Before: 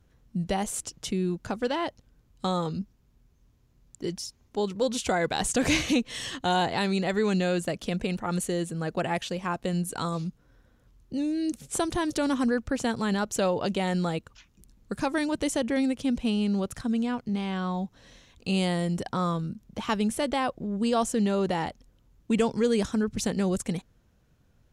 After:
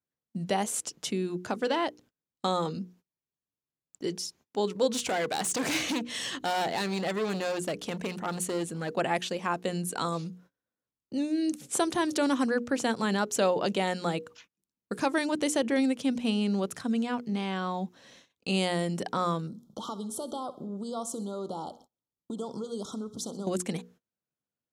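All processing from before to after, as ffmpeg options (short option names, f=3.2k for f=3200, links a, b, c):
-filter_complex "[0:a]asettb=1/sr,asplit=3[a][b][c];[a]atrim=end=4.894[d];[b]atrim=start=4.89:end=8.89,asetpts=PTS-STARTPTS,afade=t=in:d=0.004:c=qsin,afade=t=out:st=3.996:d=0.004:c=qsin,aeval=exprs='val(0)+0.00316*(sin(2*PI*50*n/s)+sin(2*PI*2*50*n/s)/2+sin(2*PI*3*50*n/s)/3+sin(2*PI*4*50*n/s)/4+sin(2*PI*5*50*n/s)/5)':c=same,asoftclip=type=hard:threshold=-26.5dB[e];[c]atrim=start=8.886[f];[d][e]acrossfade=d=0.004:c1=hsin:c2=qsin[g];[g][f]acrossfade=d=0.004:c1=qsin:c2=hsin,asettb=1/sr,asplit=3[h][i][j];[h]atrim=end=19.474[k];[i]atrim=start=19.47:end=23.47,asetpts=PTS-STARTPTS,afade=t=in:d=0.004:c=qsin,afade=t=out:st=3.996:d=0.004:c=qsin,acompressor=threshold=-32dB:ratio=5:attack=3.2:release=140:knee=1:detection=peak,asuperstop=centerf=2100:order=20:qfactor=1.2,aecho=1:1:64|128|192|256:0.141|0.0664|0.0312|0.0147,atrim=end_sample=176400[l];[j]atrim=start=23.466[m];[k][l]acrossfade=d=0.004:c1=hsin:c2=qsin[n];[n][m]acrossfade=d=0.004:c1=qsin:c2=hsin,highpass=200,bandreject=f=60:t=h:w=6,bandreject=f=120:t=h:w=6,bandreject=f=180:t=h:w=6,bandreject=f=240:t=h:w=6,bandreject=f=300:t=h:w=6,bandreject=f=360:t=h:w=6,bandreject=f=420:t=h:w=6,bandreject=f=480:t=h:w=6,agate=range=-26dB:threshold=-55dB:ratio=16:detection=peak,volume=1dB"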